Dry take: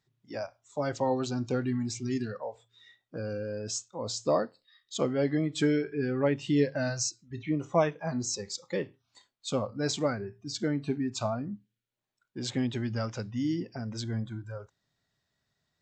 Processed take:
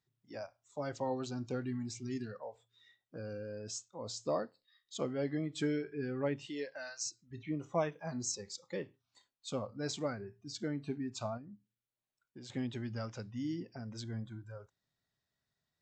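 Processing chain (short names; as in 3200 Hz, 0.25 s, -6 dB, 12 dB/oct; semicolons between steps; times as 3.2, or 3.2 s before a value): 6.46–7.05 HPF 380 Hz -> 1400 Hz 12 dB/oct; 7.92–8.32 high shelf 6100 Hz +9.5 dB; 11.37–12.5 compressor 4:1, threshold -41 dBFS, peak gain reduction 9 dB; gain -8 dB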